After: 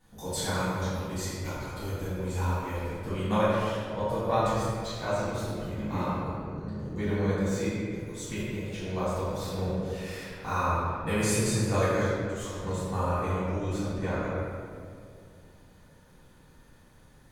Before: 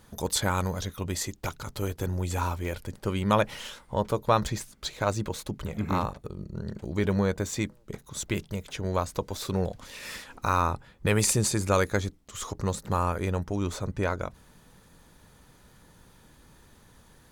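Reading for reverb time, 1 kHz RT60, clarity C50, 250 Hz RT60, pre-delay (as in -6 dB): 2.3 s, 2.0 s, -4.0 dB, 2.9 s, 4 ms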